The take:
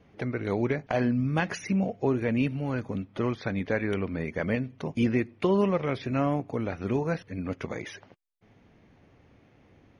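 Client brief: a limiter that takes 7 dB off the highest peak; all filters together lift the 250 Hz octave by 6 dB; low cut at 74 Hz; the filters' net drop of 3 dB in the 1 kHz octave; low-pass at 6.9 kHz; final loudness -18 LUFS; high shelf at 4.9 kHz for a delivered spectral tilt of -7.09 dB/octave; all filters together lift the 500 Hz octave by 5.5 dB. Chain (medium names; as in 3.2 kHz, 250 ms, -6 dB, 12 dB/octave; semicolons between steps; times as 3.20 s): high-pass 74 Hz; low-pass 6.9 kHz; peaking EQ 250 Hz +6 dB; peaking EQ 500 Hz +6.5 dB; peaking EQ 1 kHz -7.5 dB; treble shelf 4.9 kHz -6 dB; trim +7.5 dB; peak limiter -7 dBFS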